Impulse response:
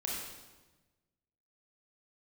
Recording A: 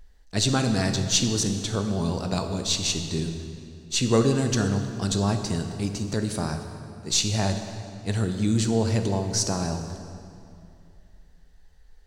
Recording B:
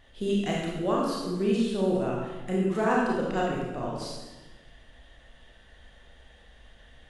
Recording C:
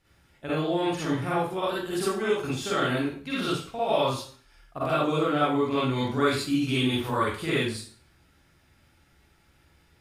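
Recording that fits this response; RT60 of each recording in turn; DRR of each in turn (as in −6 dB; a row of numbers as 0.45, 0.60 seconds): B; 2.6, 1.2, 0.45 seconds; 6.0, −4.0, −9.0 decibels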